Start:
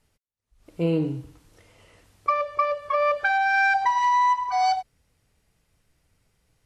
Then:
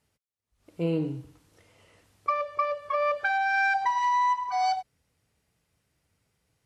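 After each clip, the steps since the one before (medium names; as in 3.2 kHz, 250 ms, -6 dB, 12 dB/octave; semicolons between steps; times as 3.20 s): high-pass 71 Hz; trim -4 dB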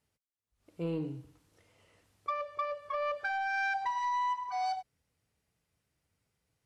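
saturation -17.5 dBFS, distortion -24 dB; trim -6.5 dB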